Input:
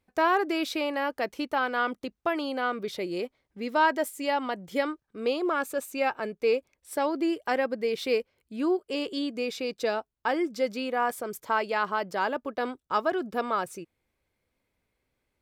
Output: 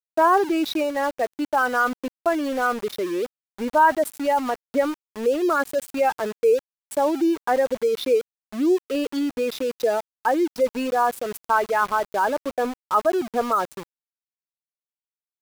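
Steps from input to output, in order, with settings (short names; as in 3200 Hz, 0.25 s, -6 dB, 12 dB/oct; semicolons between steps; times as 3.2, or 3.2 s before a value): spectral contrast raised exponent 1.7; sample gate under -37 dBFS; 0.83–1.42 upward expander 1.5:1, over -50 dBFS; gain +6.5 dB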